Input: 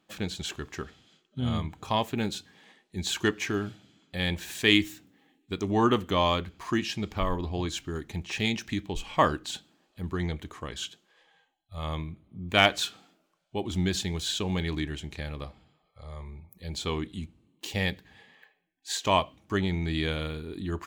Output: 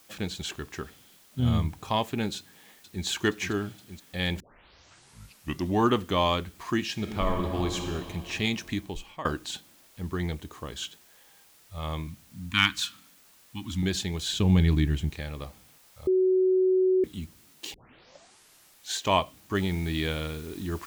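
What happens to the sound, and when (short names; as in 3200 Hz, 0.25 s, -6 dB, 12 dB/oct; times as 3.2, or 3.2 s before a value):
1.39–1.79 low shelf 170 Hz +8.5 dB
2.37–3.05 echo throw 0.47 s, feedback 80%, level -8.5 dB
4.4 tape start 1.40 s
6.92–7.8 reverb throw, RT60 2.7 s, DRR 2.5 dB
8.78–9.25 fade out linear, to -21.5 dB
10.35–10.76 bell 2000 Hz -6 dB 0.83 oct
12.07–13.83 Chebyshev band-stop 280–1000 Hz, order 3
14.33–15.1 tone controls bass +12 dB, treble -1 dB
16.07–17.04 bleep 373 Hz -19 dBFS
17.74 tape start 1.25 s
19.55 noise floor step -58 dB -51 dB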